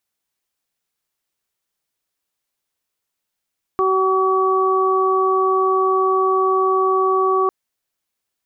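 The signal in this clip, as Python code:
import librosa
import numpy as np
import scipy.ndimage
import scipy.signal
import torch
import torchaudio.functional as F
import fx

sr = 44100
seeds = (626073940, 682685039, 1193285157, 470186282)

y = fx.additive_steady(sr, length_s=3.7, hz=379.0, level_db=-17.0, upper_db=(-8.0, 0))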